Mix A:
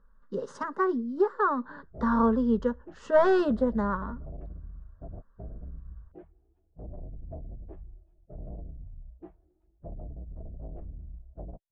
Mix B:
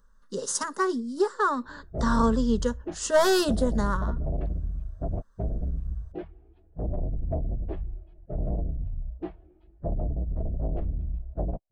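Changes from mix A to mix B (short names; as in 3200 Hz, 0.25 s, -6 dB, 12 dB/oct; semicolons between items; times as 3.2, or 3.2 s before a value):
background +12.0 dB; master: remove LPF 1600 Hz 12 dB/oct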